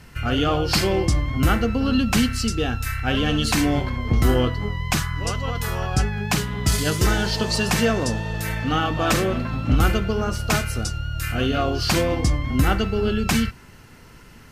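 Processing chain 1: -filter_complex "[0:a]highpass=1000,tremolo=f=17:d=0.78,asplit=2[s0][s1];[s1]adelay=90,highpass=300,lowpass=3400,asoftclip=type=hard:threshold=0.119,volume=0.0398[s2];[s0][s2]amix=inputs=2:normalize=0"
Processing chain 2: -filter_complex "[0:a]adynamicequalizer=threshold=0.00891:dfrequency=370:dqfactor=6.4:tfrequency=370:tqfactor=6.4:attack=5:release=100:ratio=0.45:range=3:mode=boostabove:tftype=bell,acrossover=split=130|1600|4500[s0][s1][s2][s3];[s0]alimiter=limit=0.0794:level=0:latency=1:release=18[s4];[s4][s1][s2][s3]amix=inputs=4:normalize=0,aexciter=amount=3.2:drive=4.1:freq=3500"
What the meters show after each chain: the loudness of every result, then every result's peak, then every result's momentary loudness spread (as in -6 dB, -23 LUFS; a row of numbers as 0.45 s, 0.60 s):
-31.0 LUFS, -19.5 LUFS; -9.0 dBFS, -1.5 dBFS; 9 LU, 8 LU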